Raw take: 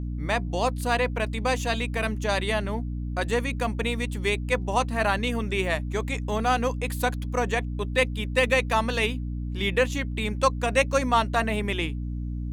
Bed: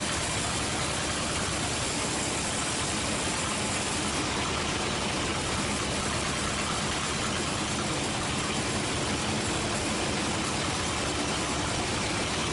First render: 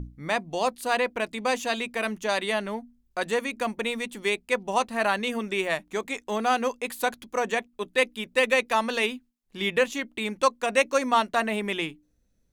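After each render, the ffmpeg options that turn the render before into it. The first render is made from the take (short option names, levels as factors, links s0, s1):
-af "bandreject=f=60:t=h:w=6,bandreject=f=120:t=h:w=6,bandreject=f=180:t=h:w=6,bandreject=f=240:t=h:w=6,bandreject=f=300:t=h:w=6"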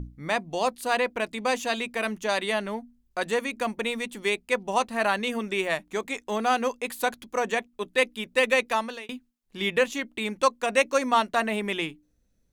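-filter_complex "[0:a]asplit=2[s0][s1];[s0]atrim=end=9.09,asetpts=PTS-STARTPTS,afade=t=out:st=8.68:d=0.41[s2];[s1]atrim=start=9.09,asetpts=PTS-STARTPTS,afade=t=in:d=0.004:c=hsin[s3];[s2][s3]concat=n=2:v=0:a=1"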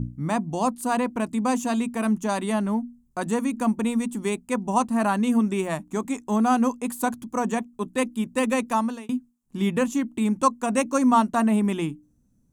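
-af "equalizer=f=125:t=o:w=1:g=11,equalizer=f=250:t=o:w=1:g=11,equalizer=f=500:t=o:w=1:g=-6,equalizer=f=1000:t=o:w=1:g=6,equalizer=f=2000:t=o:w=1:g=-8,equalizer=f=4000:t=o:w=1:g=-9,equalizer=f=8000:t=o:w=1:g=7"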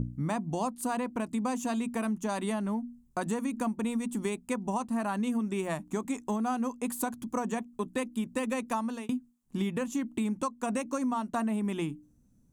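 -af "alimiter=limit=0.237:level=0:latency=1:release=260,acompressor=threshold=0.0398:ratio=6"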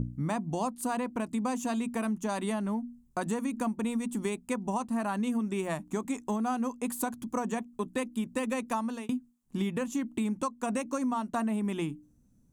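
-af anull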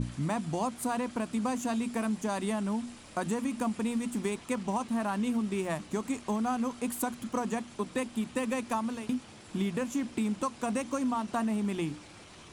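-filter_complex "[1:a]volume=0.0794[s0];[0:a][s0]amix=inputs=2:normalize=0"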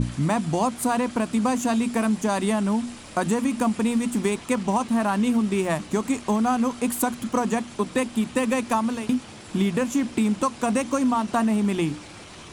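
-af "volume=2.66"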